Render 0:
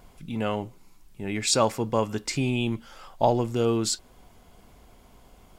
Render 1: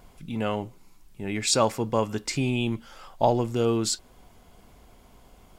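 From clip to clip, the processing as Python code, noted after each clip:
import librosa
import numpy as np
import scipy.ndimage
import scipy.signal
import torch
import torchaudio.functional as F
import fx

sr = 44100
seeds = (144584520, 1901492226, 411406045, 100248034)

y = x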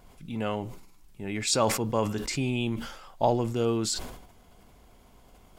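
y = fx.sustainer(x, sr, db_per_s=67.0)
y = F.gain(torch.from_numpy(y), -3.0).numpy()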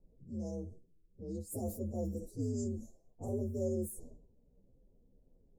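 y = fx.partial_stretch(x, sr, pct=129)
y = fx.env_lowpass(y, sr, base_hz=1700.0, full_db=-27.0)
y = scipy.signal.sosfilt(scipy.signal.ellip(3, 1.0, 60, [520.0, 7100.0], 'bandstop', fs=sr, output='sos'), y)
y = F.gain(torch.from_numpy(y), -5.5).numpy()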